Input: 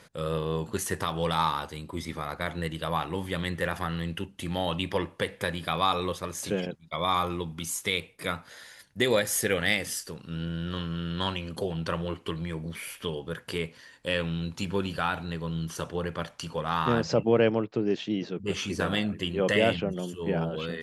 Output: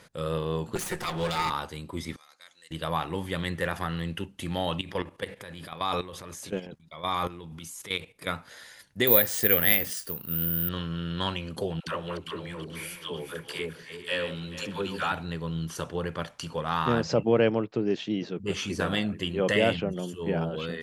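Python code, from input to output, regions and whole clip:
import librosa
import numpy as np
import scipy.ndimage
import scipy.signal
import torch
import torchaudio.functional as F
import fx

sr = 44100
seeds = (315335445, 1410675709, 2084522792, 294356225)

y = fx.chain(x, sr, fx.lower_of_two(delay_ms=5.6),
    fx.band_squash(depth_pct=40), at=(0.75, 1.5))
y = fx.chain(y, sr, fx.bandpass_q(hz=6300.0, q=2.9),
    fx.comb(ms=3.8, depth=0.34), at=(2.16, 2.71))
y = fx.chain(y, sr, fx.transient(attack_db=-3, sustain_db=6),
    fx.level_steps(step_db=14), at=(4.81, 8.27))
y = fx.chain(y, sr, fx.lowpass(hz=7000.0, slope=12),
    fx.high_shelf(hz=4900.0, db=-3.5),
    fx.resample_bad(factor=3, down='none', up='zero_stuff'), at=(9.07, 10.69))
y = fx.chain(y, sr, fx.reverse_delay_fb(ms=217, feedback_pct=53, wet_db=-9.0),
    fx.low_shelf(hz=230.0, db=-9.5),
    fx.dispersion(late='lows', ms=76.0, hz=550.0), at=(11.8, 15.12))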